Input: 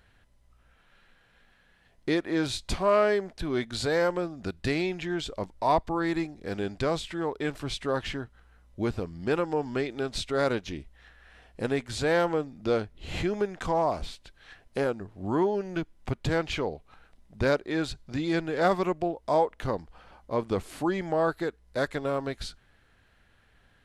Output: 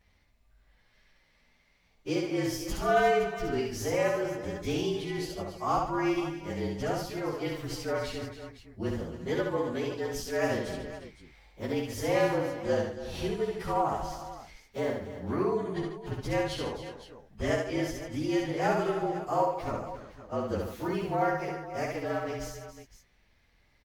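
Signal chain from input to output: inharmonic rescaling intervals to 112%; tapped delay 67/144/277/348/512 ms -3/-10.5/-12.5/-14.5/-13.5 dB; gain -2.5 dB

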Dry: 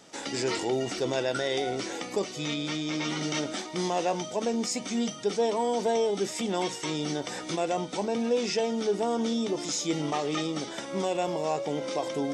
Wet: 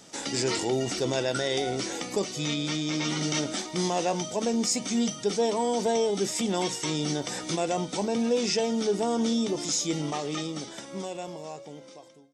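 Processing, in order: ending faded out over 3.04 s; tone controls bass +5 dB, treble +6 dB

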